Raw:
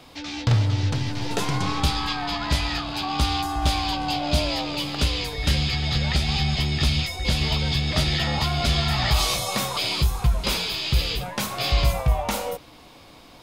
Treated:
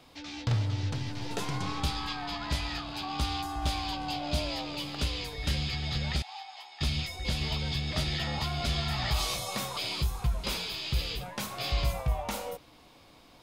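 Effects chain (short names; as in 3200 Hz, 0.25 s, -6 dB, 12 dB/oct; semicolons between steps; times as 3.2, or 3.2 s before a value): 6.22–6.81 ladder high-pass 780 Hz, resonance 75%; gain -8.5 dB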